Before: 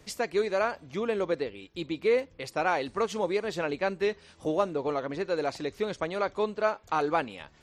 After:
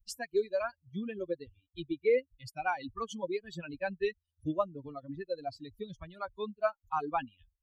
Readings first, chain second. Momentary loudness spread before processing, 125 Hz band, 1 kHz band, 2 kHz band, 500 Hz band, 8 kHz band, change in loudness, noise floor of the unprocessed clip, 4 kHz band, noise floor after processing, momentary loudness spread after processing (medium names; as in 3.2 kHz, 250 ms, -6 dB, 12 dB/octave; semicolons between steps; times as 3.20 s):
6 LU, -4.5 dB, -6.0 dB, -7.0 dB, -6.0 dB, -5.5 dB, -6.0 dB, -58 dBFS, -8.0 dB, -85 dBFS, 13 LU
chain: expander on every frequency bin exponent 3; bass shelf 140 Hz +10.5 dB